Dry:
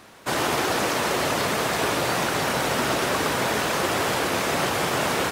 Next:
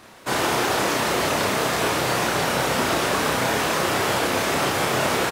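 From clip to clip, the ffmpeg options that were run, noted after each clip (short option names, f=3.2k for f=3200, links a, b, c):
-filter_complex "[0:a]asplit=2[a][b];[b]adelay=31,volume=-3dB[c];[a][c]amix=inputs=2:normalize=0"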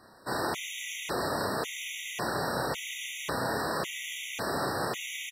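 -af "afftfilt=real='re*gt(sin(2*PI*0.91*pts/sr)*(1-2*mod(floor(b*sr/1024/1900),2)),0)':imag='im*gt(sin(2*PI*0.91*pts/sr)*(1-2*mod(floor(b*sr/1024/1900),2)),0)':win_size=1024:overlap=0.75,volume=-8dB"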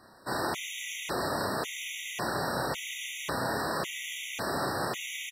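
-af "equalizer=f=460:w=7.6:g=-3.5"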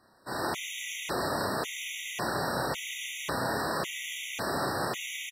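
-af "dynaudnorm=f=230:g=3:m=8dB,volume=-7.5dB"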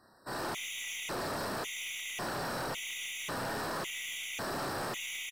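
-af "aeval=exprs='(tanh(44.7*val(0)+0.1)-tanh(0.1))/44.7':c=same"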